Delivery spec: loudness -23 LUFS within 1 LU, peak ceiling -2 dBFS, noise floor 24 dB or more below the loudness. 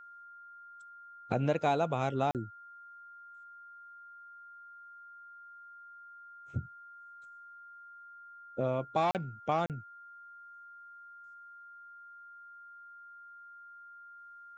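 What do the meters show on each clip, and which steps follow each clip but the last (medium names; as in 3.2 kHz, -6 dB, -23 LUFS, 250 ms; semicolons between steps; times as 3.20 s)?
dropouts 3; longest dropout 38 ms; steady tone 1.4 kHz; tone level -49 dBFS; loudness -33.0 LUFS; peak level -16.5 dBFS; loudness target -23.0 LUFS
-> interpolate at 2.31/9.11/9.66 s, 38 ms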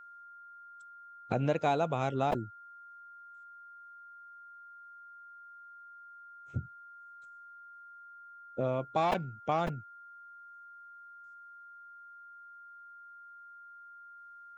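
dropouts 0; steady tone 1.4 kHz; tone level -49 dBFS
-> band-stop 1.4 kHz, Q 30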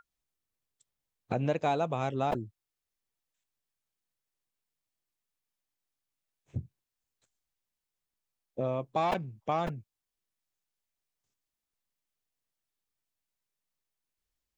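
steady tone not found; loudness -32.5 LUFS; peak level -17.0 dBFS; loudness target -23.0 LUFS
-> trim +9.5 dB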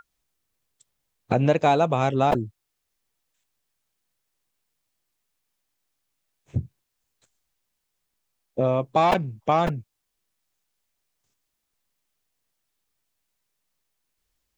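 loudness -23.0 LUFS; peak level -7.5 dBFS; noise floor -79 dBFS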